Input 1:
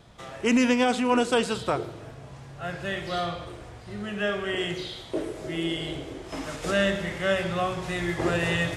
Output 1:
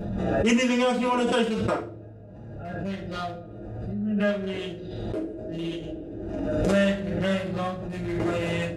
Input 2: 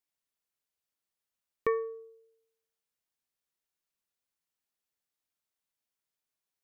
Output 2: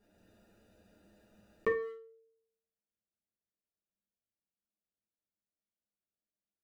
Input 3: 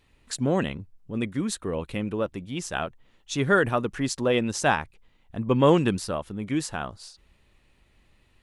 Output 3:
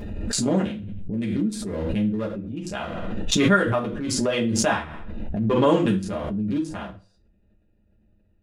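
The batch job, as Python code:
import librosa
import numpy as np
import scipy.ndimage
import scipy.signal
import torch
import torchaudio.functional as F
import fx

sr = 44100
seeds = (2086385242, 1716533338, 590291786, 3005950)

y = fx.wiener(x, sr, points=41)
y = fx.rev_fdn(y, sr, rt60_s=0.33, lf_ratio=1.0, hf_ratio=0.95, size_ms=29.0, drr_db=-4.0)
y = fx.pre_swell(y, sr, db_per_s=27.0)
y = y * 10.0 ** (-5.5 / 20.0)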